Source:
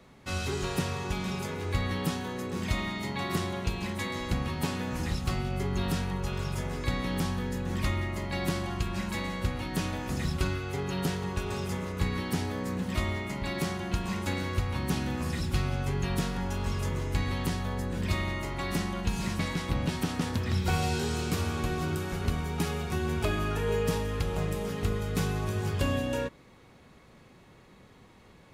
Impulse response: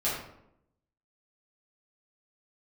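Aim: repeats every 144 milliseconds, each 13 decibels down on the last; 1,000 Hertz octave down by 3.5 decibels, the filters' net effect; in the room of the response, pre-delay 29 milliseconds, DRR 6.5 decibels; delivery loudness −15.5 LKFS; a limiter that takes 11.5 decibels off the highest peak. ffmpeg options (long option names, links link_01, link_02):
-filter_complex "[0:a]equalizer=frequency=1000:width_type=o:gain=-4.5,alimiter=level_in=4.5dB:limit=-24dB:level=0:latency=1,volume=-4.5dB,aecho=1:1:144|288|432:0.224|0.0493|0.0108,asplit=2[link_01][link_02];[1:a]atrim=start_sample=2205,adelay=29[link_03];[link_02][link_03]afir=irnorm=-1:irlink=0,volume=-15dB[link_04];[link_01][link_04]amix=inputs=2:normalize=0,volume=20.5dB"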